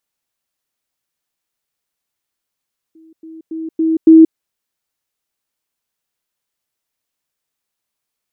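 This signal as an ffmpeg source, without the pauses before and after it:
-f lavfi -i "aevalsrc='pow(10,(-41.5+10*floor(t/0.28))/20)*sin(2*PI*322*t)*clip(min(mod(t,0.28),0.18-mod(t,0.28))/0.005,0,1)':d=1.4:s=44100"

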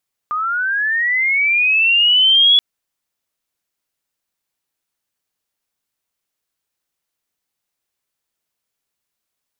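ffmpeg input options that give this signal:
-f lavfi -i "aevalsrc='pow(10,(-17.5+10*t/2.28)/20)*sin(2*PI*(1200*t+2200*t*t/(2*2.28)))':d=2.28:s=44100"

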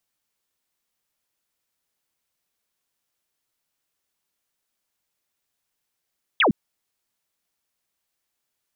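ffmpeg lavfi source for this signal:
-f lavfi -i "aevalsrc='0.188*clip(t/0.002,0,1)*clip((0.11-t)/0.002,0,1)*sin(2*PI*3700*0.11/log(160/3700)*(exp(log(160/3700)*t/0.11)-1))':d=0.11:s=44100"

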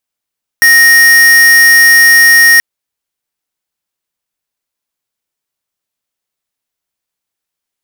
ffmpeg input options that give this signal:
-f lavfi -i "aevalsrc='0.596*(2*lt(mod(1860*t,1),0.5)-1)':d=1.98:s=44100"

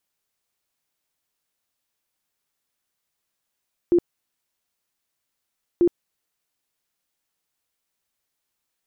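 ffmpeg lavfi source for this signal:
-f lavfi -i "aevalsrc='0.224*sin(2*PI*347*mod(t,1.89))*lt(mod(t,1.89),23/347)':d=3.78:s=44100"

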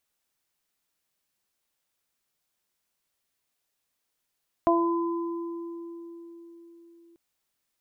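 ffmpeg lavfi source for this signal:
-f lavfi -i "aevalsrc='0.0891*pow(10,-3*t/4.55)*sin(2*PI*338*t)+0.126*pow(10,-3*t/0.42)*sin(2*PI*676*t)+0.0708*pow(10,-3*t/2.27)*sin(2*PI*1014*t)':d=2.49:s=44100"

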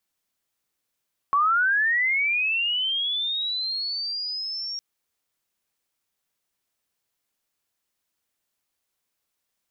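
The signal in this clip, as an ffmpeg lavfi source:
-f lavfi -i "aevalsrc='pow(10,(-17-12*t/3.46)/20)*sin(2*PI*(1100*t+4500*t*t/(2*3.46)))':d=3.46:s=44100"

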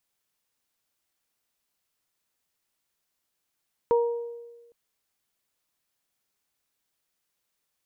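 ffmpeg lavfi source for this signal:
-f lavfi -i "aevalsrc='0.141*pow(10,-3*t/1.29)*sin(2*PI*471*t)+0.0631*pow(10,-3*t/0.68)*sin(2*PI*942*t)':d=0.81:s=44100"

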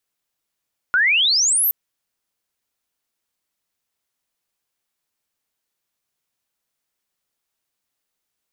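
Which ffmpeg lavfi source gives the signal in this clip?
-f lavfi -i "aevalsrc='pow(10,(-13-2*t/0.77)/20)*sin(2*PI*1400*0.77/log(14000/1400)*(exp(log(14000/1400)*t/0.77)-1))':d=0.77:s=44100"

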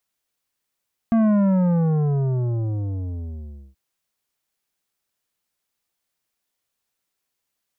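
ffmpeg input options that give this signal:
-f lavfi -i "aevalsrc='0.168*clip((2.63-t)/2.49,0,1)*tanh(3.35*sin(2*PI*230*2.63/log(65/230)*(exp(log(65/230)*t/2.63)-1)))/tanh(3.35)':d=2.63:s=44100"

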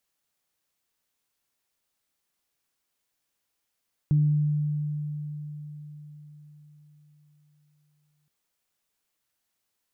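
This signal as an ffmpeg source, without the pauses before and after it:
-f lavfi -i "aevalsrc='0.141*pow(10,-3*t/4.72)*sin(2*PI*149*t)+0.0158*pow(10,-3*t/0.87)*sin(2*PI*298*t)':d=4.17:s=44100"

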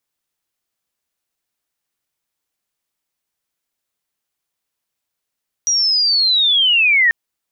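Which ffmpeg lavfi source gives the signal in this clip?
-f lavfi -i "aevalsrc='pow(10,(-13+3.5*t/1.44)/20)*sin(2*PI*(5800*t-4000*t*t/(2*1.44)))':d=1.44:s=44100"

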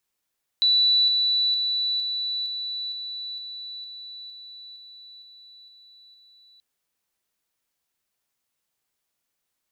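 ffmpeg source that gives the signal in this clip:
-f lavfi -i "aevalsrc='pow(10,(-16-3*floor(t/0.46))/20)*sin(2*PI*3960*t)':d=5.98:s=44100"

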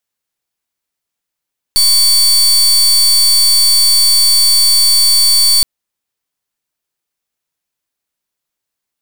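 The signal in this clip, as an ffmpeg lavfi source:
-f lavfi -i "aevalsrc='0.355*(2*lt(mod(4520*t,1),0.31)-1)':d=3.87:s=44100"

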